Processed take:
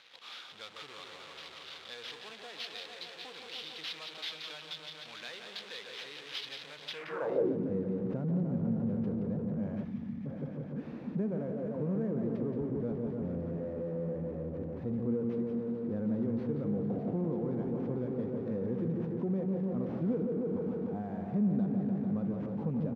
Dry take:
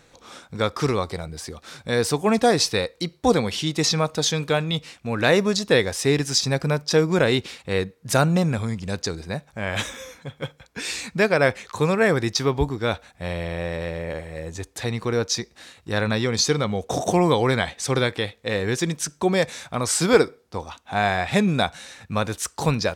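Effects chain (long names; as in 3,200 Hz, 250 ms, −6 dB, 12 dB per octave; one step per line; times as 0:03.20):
on a send: echo whose low-pass opens from repeat to repeat 149 ms, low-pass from 750 Hz, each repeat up 1 octave, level −6 dB
on the sum: downward compressor, threshold −20 dBFS, peak gain reduction 10.5 dB
single-tap delay 175 ms −8 dB
in parallel at −11 dB: fuzz pedal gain 48 dB, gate −57 dBFS
on the sum: time-frequency box erased 0:09.84–0:10.26, 300–1,700 Hz
sample-rate reduction 8,400 Hz, jitter 20%
high-shelf EQ 2,900 Hz −12 dB
band-pass filter sweep 3,600 Hz → 220 Hz, 0:06.90–0:07.58
dynamic equaliser 490 Hz, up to +6 dB, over −47 dBFS, Q 5.9
level −7 dB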